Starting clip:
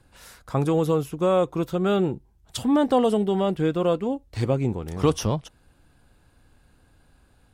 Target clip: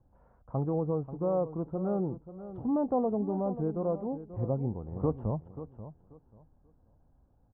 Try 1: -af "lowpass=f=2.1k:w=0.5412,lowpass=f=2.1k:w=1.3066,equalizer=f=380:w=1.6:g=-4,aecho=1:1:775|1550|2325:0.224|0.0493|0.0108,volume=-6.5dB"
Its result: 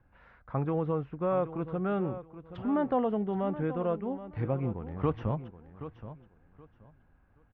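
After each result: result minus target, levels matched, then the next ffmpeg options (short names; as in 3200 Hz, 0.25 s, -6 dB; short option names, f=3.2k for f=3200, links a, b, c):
2000 Hz band +18.0 dB; echo 0.239 s late
-af "lowpass=f=900:w=0.5412,lowpass=f=900:w=1.3066,equalizer=f=380:w=1.6:g=-4,aecho=1:1:775|1550|2325:0.224|0.0493|0.0108,volume=-6.5dB"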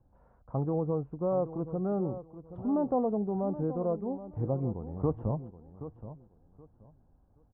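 echo 0.239 s late
-af "lowpass=f=900:w=0.5412,lowpass=f=900:w=1.3066,equalizer=f=380:w=1.6:g=-4,aecho=1:1:536|1072|1608:0.224|0.0493|0.0108,volume=-6.5dB"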